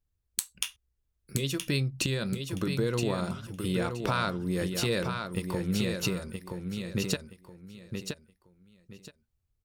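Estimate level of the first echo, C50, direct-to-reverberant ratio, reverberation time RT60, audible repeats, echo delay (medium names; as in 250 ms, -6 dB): -6.0 dB, no reverb, no reverb, no reverb, 3, 972 ms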